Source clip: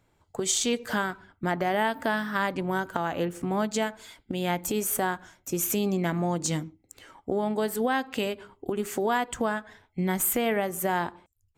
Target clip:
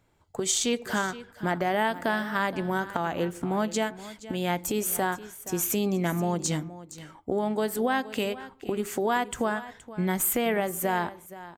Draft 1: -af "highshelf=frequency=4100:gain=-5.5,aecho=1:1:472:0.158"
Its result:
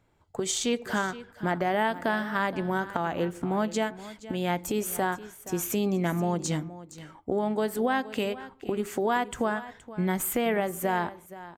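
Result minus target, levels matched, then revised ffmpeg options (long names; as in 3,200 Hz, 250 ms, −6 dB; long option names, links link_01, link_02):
8,000 Hz band −3.5 dB
-af "aecho=1:1:472:0.158"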